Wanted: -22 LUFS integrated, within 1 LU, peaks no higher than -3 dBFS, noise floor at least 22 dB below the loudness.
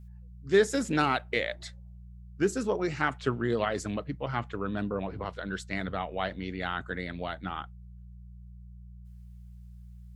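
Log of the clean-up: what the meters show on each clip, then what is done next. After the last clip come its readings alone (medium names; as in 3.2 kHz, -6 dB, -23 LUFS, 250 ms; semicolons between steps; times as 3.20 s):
hum 60 Hz; highest harmonic 180 Hz; hum level -44 dBFS; loudness -31.0 LUFS; peak level -10.5 dBFS; loudness target -22.0 LUFS
-> de-hum 60 Hz, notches 3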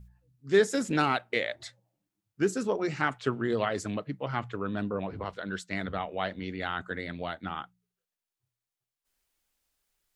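hum not found; loudness -31.0 LUFS; peak level -10.5 dBFS; loudness target -22.0 LUFS
-> trim +9 dB; peak limiter -3 dBFS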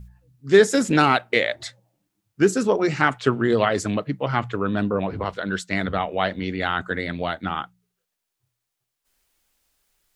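loudness -22.0 LUFS; peak level -3.0 dBFS; noise floor -81 dBFS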